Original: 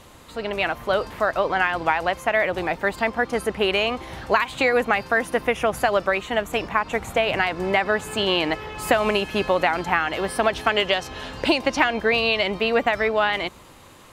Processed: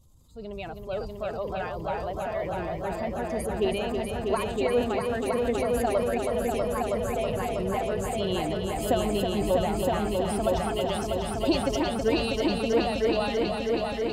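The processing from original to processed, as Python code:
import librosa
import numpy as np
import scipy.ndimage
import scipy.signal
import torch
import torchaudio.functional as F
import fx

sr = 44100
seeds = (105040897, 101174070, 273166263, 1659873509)

p1 = fx.bin_expand(x, sr, power=1.5)
p2 = fx.peak_eq(p1, sr, hz=1800.0, db=-15.0, octaves=1.5)
p3 = fx.level_steps(p2, sr, step_db=23)
p4 = p2 + (p3 * librosa.db_to_amplitude(1.0))
p5 = fx.low_shelf(p4, sr, hz=160.0, db=8.0)
p6 = p5 + fx.echo_heads(p5, sr, ms=322, heads='all three', feedback_pct=67, wet_db=-7.0, dry=0)
p7 = fx.transient(p6, sr, attack_db=-3, sustain_db=4)
y = p7 * librosa.db_to_amplitude(-5.0)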